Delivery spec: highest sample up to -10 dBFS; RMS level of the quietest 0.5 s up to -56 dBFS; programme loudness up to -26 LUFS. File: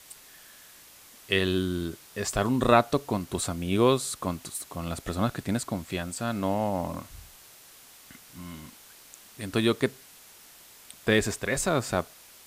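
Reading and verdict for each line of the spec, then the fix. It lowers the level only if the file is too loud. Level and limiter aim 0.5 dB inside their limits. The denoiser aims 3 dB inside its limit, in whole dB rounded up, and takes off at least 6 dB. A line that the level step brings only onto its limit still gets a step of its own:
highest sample -5.5 dBFS: fail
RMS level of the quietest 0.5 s -52 dBFS: fail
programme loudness -28.0 LUFS: OK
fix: denoiser 7 dB, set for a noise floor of -52 dBFS; limiter -10.5 dBFS

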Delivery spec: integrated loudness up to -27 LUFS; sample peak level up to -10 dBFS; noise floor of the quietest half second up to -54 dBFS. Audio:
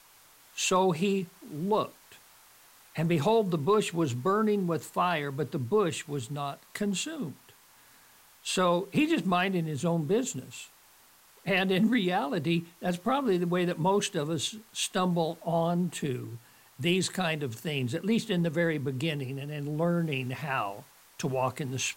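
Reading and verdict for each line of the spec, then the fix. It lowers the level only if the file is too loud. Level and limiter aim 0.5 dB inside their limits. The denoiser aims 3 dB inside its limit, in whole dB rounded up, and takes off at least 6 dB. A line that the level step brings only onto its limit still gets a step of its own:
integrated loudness -29.0 LUFS: OK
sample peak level -14.0 dBFS: OK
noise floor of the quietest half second -59 dBFS: OK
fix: none

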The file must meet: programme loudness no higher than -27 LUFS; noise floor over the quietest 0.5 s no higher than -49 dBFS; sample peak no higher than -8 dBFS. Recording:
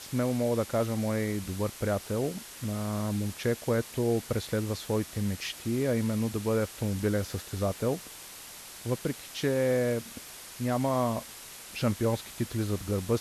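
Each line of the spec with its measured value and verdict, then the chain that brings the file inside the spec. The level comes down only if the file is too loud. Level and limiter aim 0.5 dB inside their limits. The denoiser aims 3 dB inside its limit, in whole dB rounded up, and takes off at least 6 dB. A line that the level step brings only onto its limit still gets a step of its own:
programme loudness -30.5 LUFS: OK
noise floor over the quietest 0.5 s -46 dBFS: fail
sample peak -14.0 dBFS: OK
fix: denoiser 6 dB, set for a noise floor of -46 dBFS

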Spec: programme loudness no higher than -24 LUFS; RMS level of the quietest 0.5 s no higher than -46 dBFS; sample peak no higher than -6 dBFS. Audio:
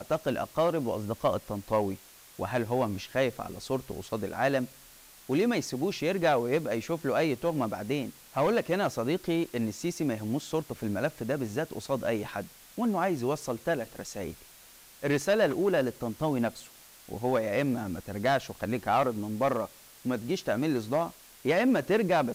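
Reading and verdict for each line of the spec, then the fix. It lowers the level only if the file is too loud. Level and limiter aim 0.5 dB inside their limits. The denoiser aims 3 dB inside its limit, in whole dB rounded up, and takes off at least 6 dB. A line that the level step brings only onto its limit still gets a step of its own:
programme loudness -30.0 LUFS: OK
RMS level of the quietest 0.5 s -54 dBFS: OK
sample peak -13.5 dBFS: OK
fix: none

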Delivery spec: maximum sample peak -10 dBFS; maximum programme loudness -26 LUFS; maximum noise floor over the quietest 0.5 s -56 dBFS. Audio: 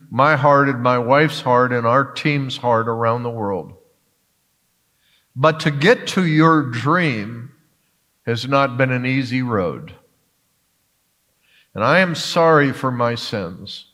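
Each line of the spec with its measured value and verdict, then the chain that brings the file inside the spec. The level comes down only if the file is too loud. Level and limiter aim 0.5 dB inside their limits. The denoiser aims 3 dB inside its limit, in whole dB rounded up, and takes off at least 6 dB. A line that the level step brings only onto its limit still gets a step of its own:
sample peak -1.5 dBFS: fail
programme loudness -17.5 LUFS: fail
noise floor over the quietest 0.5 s -65 dBFS: OK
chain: gain -9 dB

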